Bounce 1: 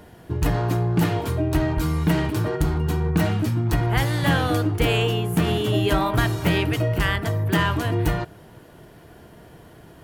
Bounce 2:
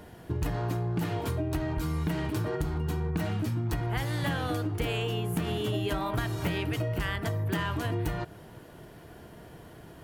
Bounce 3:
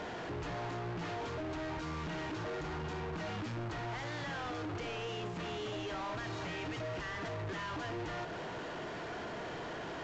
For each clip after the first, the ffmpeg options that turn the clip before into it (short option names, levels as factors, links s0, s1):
-af "acompressor=threshold=0.0562:ratio=6,volume=0.794"
-filter_complex "[0:a]alimiter=level_in=1.58:limit=0.0631:level=0:latency=1:release=107,volume=0.631,asplit=2[s0][s1];[s1]highpass=f=720:p=1,volume=50.1,asoftclip=type=tanh:threshold=0.0422[s2];[s0][s2]amix=inputs=2:normalize=0,lowpass=f=2400:p=1,volume=0.501,volume=0.501" -ar 16000 -c:a pcm_alaw